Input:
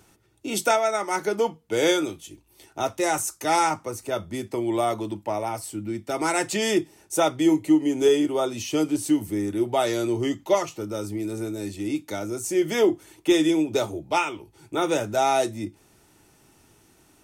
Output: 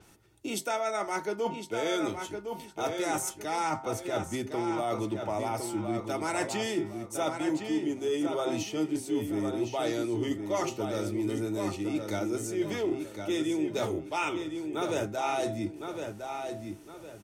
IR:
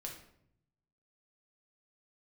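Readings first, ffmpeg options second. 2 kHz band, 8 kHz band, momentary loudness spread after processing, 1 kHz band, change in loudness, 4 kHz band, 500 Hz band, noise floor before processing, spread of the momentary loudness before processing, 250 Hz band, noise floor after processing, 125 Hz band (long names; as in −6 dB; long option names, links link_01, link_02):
−6.5 dB, −7.5 dB, 6 LU, −7.0 dB, −7.0 dB, −7.5 dB, −7.0 dB, −60 dBFS, 11 LU, −6.5 dB, −48 dBFS, −3.0 dB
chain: -filter_complex "[0:a]bandreject=frequency=131.5:width_type=h:width=4,bandreject=frequency=263:width_type=h:width=4,bandreject=frequency=394.5:width_type=h:width=4,bandreject=frequency=526:width_type=h:width=4,bandreject=frequency=657.5:width_type=h:width=4,bandreject=frequency=789:width_type=h:width=4,bandreject=frequency=920.5:width_type=h:width=4,bandreject=frequency=1052:width_type=h:width=4,bandreject=frequency=1183.5:width_type=h:width=4,bandreject=frequency=1315:width_type=h:width=4,bandreject=frequency=1446.5:width_type=h:width=4,bandreject=frequency=1578:width_type=h:width=4,bandreject=frequency=1709.5:width_type=h:width=4,bandreject=frequency=1841:width_type=h:width=4,bandreject=frequency=1972.5:width_type=h:width=4,bandreject=frequency=2104:width_type=h:width=4,bandreject=frequency=2235.5:width_type=h:width=4,areverse,acompressor=threshold=-28dB:ratio=6,areverse,asplit=2[link_01][link_02];[link_02]adelay=1060,lowpass=frequency=4900:poles=1,volume=-6dB,asplit=2[link_03][link_04];[link_04]adelay=1060,lowpass=frequency=4900:poles=1,volume=0.34,asplit=2[link_05][link_06];[link_06]adelay=1060,lowpass=frequency=4900:poles=1,volume=0.34,asplit=2[link_07][link_08];[link_08]adelay=1060,lowpass=frequency=4900:poles=1,volume=0.34[link_09];[link_01][link_03][link_05][link_07][link_09]amix=inputs=5:normalize=0,adynamicequalizer=threshold=0.00251:dfrequency=6700:dqfactor=0.7:tfrequency=6700:tqfactor=0.7:attack=5:release=100:ratio=0.375:range=3:mode=cutabove:tftype=highshelf"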